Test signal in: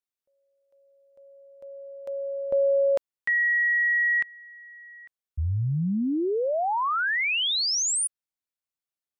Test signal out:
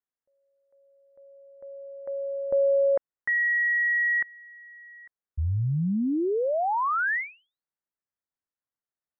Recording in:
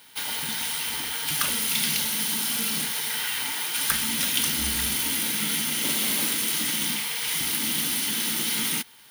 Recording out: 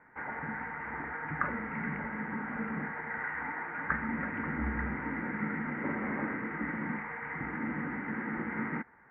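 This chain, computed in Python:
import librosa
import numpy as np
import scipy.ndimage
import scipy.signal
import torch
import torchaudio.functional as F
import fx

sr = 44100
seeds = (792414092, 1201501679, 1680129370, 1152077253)

y = scipy.signal.sosfilt(scipy.signal.butter(12, 2000.0, 'lowpass', fs=sr, output='sos'), x)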